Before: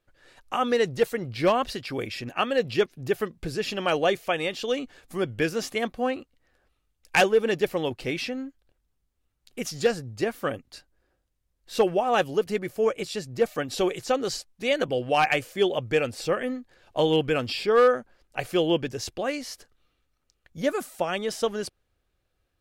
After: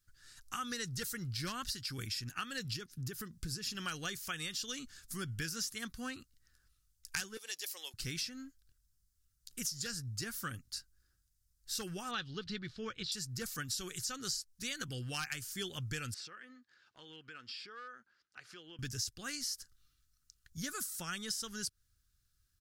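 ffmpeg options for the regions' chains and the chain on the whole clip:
ffmpeg -i in.wav -filter_complex "[0:a]asettb=1/sr,asplit=3[link_01][link_02][link_03];[link_01]atrim=end=2.764[link_04];[link_02]atrim=start=2.76:end=3.75,asetpts=PTS-STARTPTS,afade=type=in:duration=0.004:curve=qsin,afade=type=out:start_time=0.986:duration=0.004:curve=qsin,equalizer=frequency=310:width=0.44:gain=5.5,acompressor=threshold=-33dB:ratio=2:attack=3.2:release=140:knee=1:detection=peak[link_05];[link_03]atrim=start=3.746[link_06];[link_04][link_05]acrossfade=duration=0.004:curve1=hsin:curve2=qsin[link_07];[link_07][link_06]acrossfade=duration=0.004:curve1=qsin:curve2=hsin,asettb=1/sr,asplit=3[link_08][link_09][link_10];[link_08]atrim=end=7.374[link_11];[link_09]atrim=start=7.37:end=7.94,asetpts=PTS-STARTPTS,afade=type=in:duration=0.004:curve=qsin,afade=type=out:start_time=0.566:duration=0.004:curve=qsin,highpass=frequency=570:width=0.5412,highpass=frequency=570:width=1.3066,equalizer=frequency=1400:width=1.7:gain=-13.5[link_12];[link_10]atrim=start=7.936[link_13];[link_11][link_12]acrossfade=duration=0.004:curve1=hsin:curve2=qsin[link_14];[link_14][link_13]acrossfade=duration=0.004:curve1=qsin:curve2=hsin,asettb=1/sr,asplit=3[link_15][link_16][link_17];[link_15]atrim=end=12.114[link_18];[link_16]atrim=start=12.11:end=13.12,asetpts=PTS-STARTPTS,afade=type=in:duration=0.004:curve=qsin,afade=type=out:start_time=1.006:duration=0.004:curve=qsin,lowpass=frequency=3800:width_type=q:width=4.7,aemphasis=mode=reproduction:type=75kf[link_19];[link_17]atrim=start=13.116[link_20];[link_18][link_19]acrossfade=duration=0.004:curve1=hsin:curve2=qsin[link_21];[link_21][link_20]acrossfade=duration=0.004:curve1=qsin:curve2=hsin,asettb=1/sr,asplit=3[link_22][link_23][link_24];[link_22]atrim=end=16.144[link_25];[link_23]atrim=start=16.14:end=18.79,asetpts=PTS-STARTPTS,afade=type=in:duration=0.004:curve=qsin,afade=type=out:start_time=2.646:duration=0.004:curve=qsin,highpass=370,lowpass=2900,acompressor=threshold=-45dB:ratio=2:attack=3.2:release=140:knee=1:detection=peak[link_26];[link_24]atrim=start=18.786[link_27];[link_25][link_26]acrossfade=duration=0.004:curve1=hsin:curve2=qsin[link_28];[link_28][link_27]acrossfade=duration=0.004:curve1=qsin:curve2=hsin,firequalizer=gain_entry='entry(110,0);entry(270,-12);entry(600,-28);entry(1400,-2);entry(2300,-10);entry(5100,8)':delay=0.05:min_phase=1,acompressor=threshold=-35dB:ratio=5,volume=-1dB" out.wav

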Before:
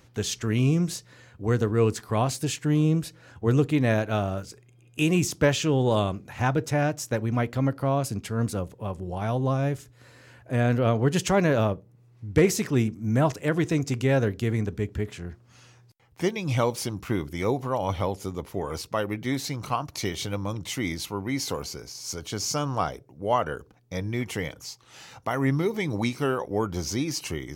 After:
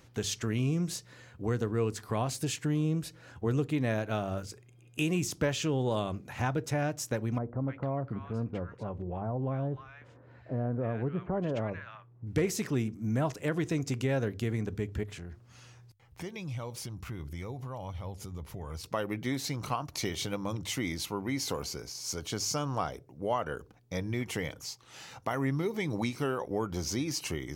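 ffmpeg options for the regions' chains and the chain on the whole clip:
ffmpeg -i in.wav -filter_complex "[0:a]asettb=1/sr,asplit=3[link_01][link_02][link_03];[link_01]atrim=end=7.384[link_04];[link_02]atrim=start=7.38:end=12.27,asetpts=PTS-STARTPTS,afade=type=in:duration=0.004:curve=qsin,afade=type=out:start_time=4.886:duration=0.004:curve=qsin,lowpass=1700,acompressor=threshold=-31dB:ratio=1.5:attack=3.2:release=140:knee=1:detection=peak,acrossover=split=1300[link_05][link_06];[link_06]adelay=300[link_07];[link_05][link_07]amix=inputs=2:normalize=0,atrim=end_sample=215649[link_08];[link_03]atrim=start=12.266[link_09];[link_04][link_08]acrossfade=duration=0.004:curve1=hsin:curve2=qsin[link_10];[link_10][link_09]acrossfade=duration=0.004:curve1=qsin:curve2=hsin,asettb=1/sr,asplit=3[link_11][link_12][link_13];[link_11]atrim=end=15.034[link_14];[link_12]atrim=start=15.03:end=18.84,asetpts=PTS-STARTPTS,afade=type=in:duration=0.004:curve=qsin,afade=type=out:start_time=3.806:duration=0.004:curve=qsin,asubboost=boost=5.5:cutoff=140,acompressor=threshold=-38dB:ratio=3:attack=3.2:release=140:knee=1:detection=peak[link_15];[link_13]atrim=start=18.836[link_16];[link_14][link_15]acrossfade=duration=0.004:curve1=hsin:curve2=qsin[link_17];[link_17][link_16]acrossfade=duration=0.004:curve1=qsin:curve2=hsin,bandreject=frequency=50:width_type=h:width=6,bandreject=frequency=100:width_type=h:width=6,acompressor=threshold=-29dB:ratio=2,volume=-1.5dB" out.wav

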